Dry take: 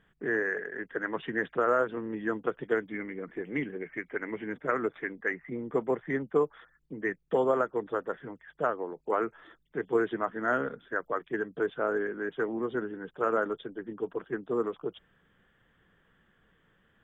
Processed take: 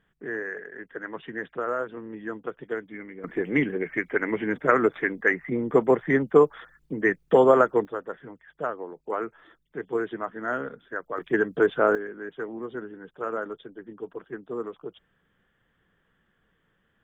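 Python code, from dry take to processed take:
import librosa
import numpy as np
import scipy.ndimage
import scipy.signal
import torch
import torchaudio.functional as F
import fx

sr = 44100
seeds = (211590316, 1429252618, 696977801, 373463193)

y = fx.gain(x, sr, db=fx.steps((0.0, -3.0), (3.24, 9.0), (7.85, -1.0), (11.18, 9.0), (11.95, -3.0)))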